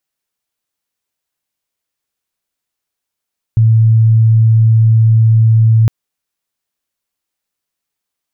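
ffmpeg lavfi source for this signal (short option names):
-f lavfi -i "aevalsrc='0.562*sin(2*PI*112*t)':d=2.31:s=44100"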